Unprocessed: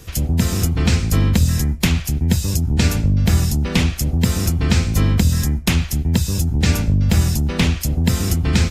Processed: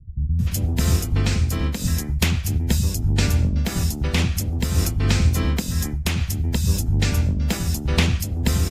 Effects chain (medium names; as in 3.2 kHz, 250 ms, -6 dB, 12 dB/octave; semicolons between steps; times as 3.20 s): bands offset in time lows, highs 390 ms, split 180 Hz; random flutter of the level, depth 60%